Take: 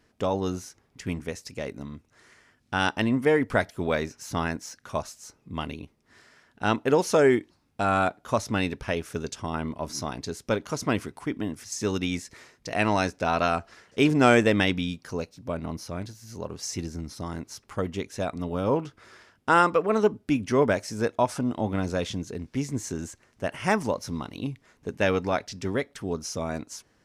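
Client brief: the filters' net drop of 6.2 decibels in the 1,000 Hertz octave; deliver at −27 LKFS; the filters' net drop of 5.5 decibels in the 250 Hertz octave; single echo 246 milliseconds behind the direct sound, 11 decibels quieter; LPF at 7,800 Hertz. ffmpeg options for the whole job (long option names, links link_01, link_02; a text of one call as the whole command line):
ffmpeg -i in.wav -af "lowpass=7800,equalizer=frequency=250:width_type=o:gain=-6.5,equalizer=frequency=1000:width_type=o:gain=-8.5,aecho=1:1:246:0.282,volume=3.5dB" out.wav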